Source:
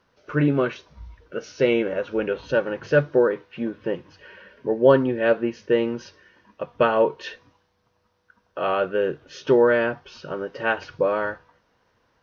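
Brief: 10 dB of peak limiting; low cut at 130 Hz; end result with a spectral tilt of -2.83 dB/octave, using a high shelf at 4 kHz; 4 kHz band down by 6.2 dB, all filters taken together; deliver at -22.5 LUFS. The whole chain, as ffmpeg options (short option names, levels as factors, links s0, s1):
-af "highpass=130,highshelf=f=4000:g=-4,equalizer=f=4000:t=o:g=-7.5,volume=1.58,alimiter=limit=0.316:level=0:latency=1"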